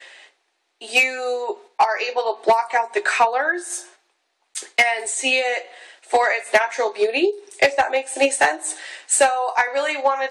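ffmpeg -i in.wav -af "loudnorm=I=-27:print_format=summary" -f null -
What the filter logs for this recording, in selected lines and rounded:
Input Integrated:    -19.8 LUFS
Input True Peak:      -6.7 dBTP
Input LRA:             2.0 LU
Input Threshold:     -30.4 LUFS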